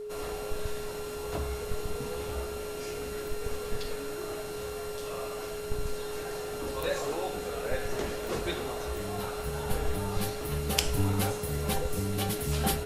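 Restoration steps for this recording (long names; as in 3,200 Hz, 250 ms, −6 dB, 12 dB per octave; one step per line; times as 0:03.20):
notch filter 420 Hz, Q 30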